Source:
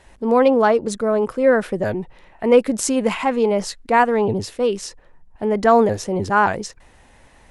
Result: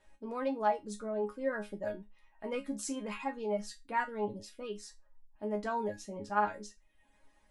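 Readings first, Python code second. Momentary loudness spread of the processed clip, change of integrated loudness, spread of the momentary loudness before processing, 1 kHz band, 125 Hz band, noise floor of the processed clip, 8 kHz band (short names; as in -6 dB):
12 LU, -18.0 dB, 12 LU, -15.5 dB, -20.0 dB, -67 dBFS, -17.0 dB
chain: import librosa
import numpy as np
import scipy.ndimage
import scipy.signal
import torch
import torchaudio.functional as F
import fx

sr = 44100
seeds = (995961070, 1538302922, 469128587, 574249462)

y = fx.dereverb_blind(x, sr, rt60_s=0.7)
y = fx.resonator_bank(y, sr, root=56, chord='sus4', decay_s=0.2)
y = y * 10.0 ** (-2.0 / 20.0)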